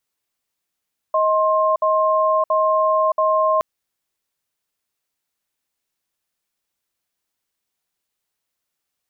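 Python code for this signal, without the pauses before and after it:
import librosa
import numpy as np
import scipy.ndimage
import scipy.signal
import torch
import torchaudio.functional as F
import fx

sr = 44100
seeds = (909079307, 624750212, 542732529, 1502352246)

y = fx.cadence(sr, length_s=2.47, low_hz=630.0, high_hz=1060.0, on_s=0.62, off_s=0.06, level_db=-17.0)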